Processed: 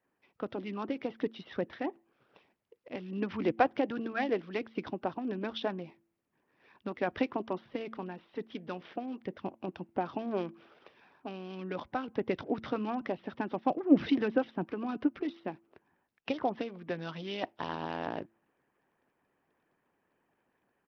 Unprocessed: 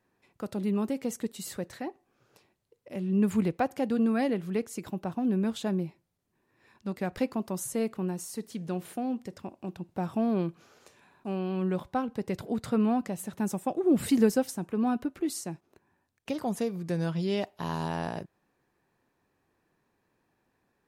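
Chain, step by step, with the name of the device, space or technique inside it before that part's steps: de-hum 112.1 Hz, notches 3; harmonic-percussive split harmonic -14 dB; dynamic EQ 280 Hz, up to +5 dB, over -51 dBFS, Q 3.2; Bluetooth headset (HPF 180 Hz 6 dB/oct; AGC gain up to 4 dB; downsampling 8000 Hz; SBC 64 kbps 44100 Hz)

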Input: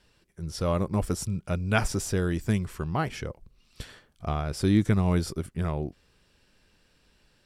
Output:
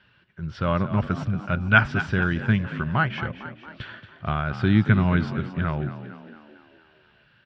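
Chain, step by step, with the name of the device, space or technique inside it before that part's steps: frequency-shifting delay pedal into a guitar cabinet (frequency-shifting echo 0.227 s, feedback 55%, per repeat +48 Hz, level -12.5 dB; speaker cabinet 95–3400 Hz, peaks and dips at 120 Hz +5 dB, 310 Hz -6 dB, 460 Hz -9 dB, 730 Hz -4 dB, 1500 Hz +10 dB, 3000 Hz +4 dB); gain +4.5 dB

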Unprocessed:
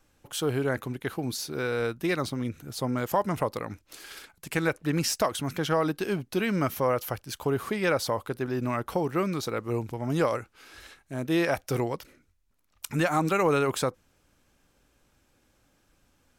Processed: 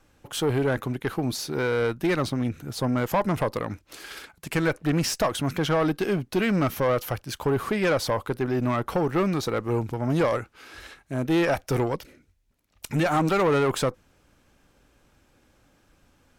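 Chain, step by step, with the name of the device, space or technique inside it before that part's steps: tube preamp driven hard (tube stage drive 23 dB, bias 0.25; high shelf 4400 Hz -6 dB); 11.95–13.06 bell 1200 Hz -6 dB 0.86 oct; gain +6.5 dB

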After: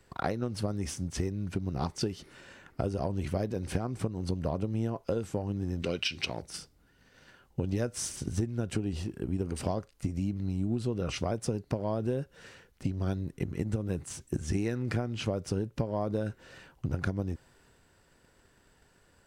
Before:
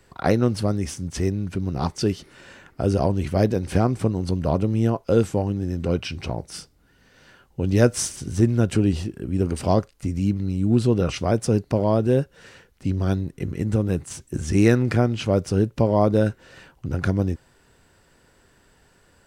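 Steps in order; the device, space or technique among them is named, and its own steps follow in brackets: 5.82–6.42 weighting filter D; drum-bus smash (transient shaper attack +8 dB, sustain +3 dB; compressor 10:1, threshold -19 dBFS, peak gain reduction 13 dB; soft clip -9 dBFS, distortion -26 dB); gain -7 dB

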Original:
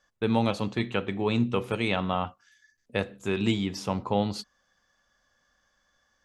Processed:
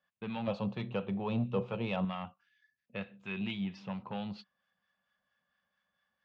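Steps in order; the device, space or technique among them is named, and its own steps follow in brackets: guitar amplifier with harmonic tremolo (harmonic tremolo 4.4 Hz, depth 50%, crossover 900 Hz; soft clip -20 dBFS, distortion -16 dB; speaker cabinet 110–3900 Hz, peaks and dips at 190 Hz +7 dB, 300 Hz -10 dB, 430 Hz -6 dB, 2600 Hz +7 dB); 0.47–2.05 graphic EQ 125/500/1000/2000/8000 Hz +9/+10/+5/-8/+6 dB; gain -8 dB

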